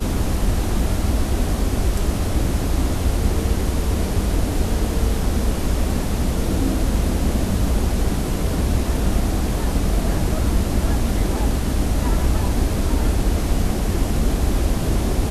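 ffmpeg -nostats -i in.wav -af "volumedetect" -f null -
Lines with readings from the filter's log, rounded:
mean_volume: -18.6 dB
max_volume: -6.4 dB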